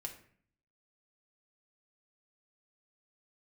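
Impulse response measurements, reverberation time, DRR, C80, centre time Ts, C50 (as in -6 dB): 0.55 s, 2.0 dB, 13.5 dB, 15 ms, 10.0 dB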